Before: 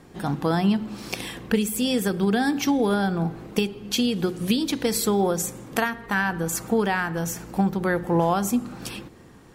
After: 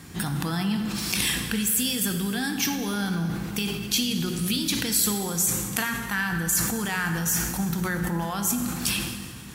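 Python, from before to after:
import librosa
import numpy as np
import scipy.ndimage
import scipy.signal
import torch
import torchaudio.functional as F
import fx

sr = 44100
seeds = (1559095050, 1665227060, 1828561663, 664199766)

p1 = fx.high_shelf(x, sr, hz=7700.0, db=8.0)
p2 = fx.over_compress(p1, sr, threshold_db=-32.0, ratio=-1.0)
p3 = p1 + (p2 * 10.0 ** (2.0 / 20.0))
p4 = scipy.signal.sosfilt(scipy.signal.butter(2, 53.0, 'highpass', fs=sr, output='sos'), p3)
p5 = fx.peak_eq(p4, sr, hz=520.0, db=-14.5, octaves=1.9)
p6 = fx.rev_plate(p5, sr, seeds[0], rt60_s=2.2, hf_ratio=0.85, predelay_ms=0, drr_db=5.5)
p7 = fx.sustainer(p6, sr, db_per_s=42.0)
y = p7 * 10.0 ** (-2.5 / 20.0)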